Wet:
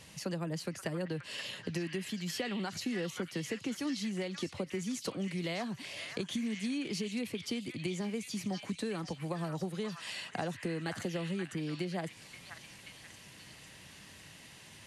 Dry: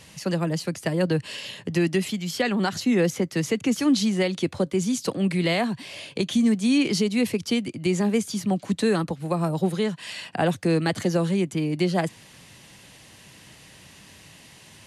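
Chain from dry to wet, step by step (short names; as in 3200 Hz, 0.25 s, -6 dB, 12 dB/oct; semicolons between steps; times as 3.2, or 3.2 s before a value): compressor, threshold -28 dBFS, peak gain reduction 11.5 dB; delay with a stepping band-pass 0.531 s, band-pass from 1600 Hz, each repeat 0.7 oct, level -2 dB; gain -5.5 dB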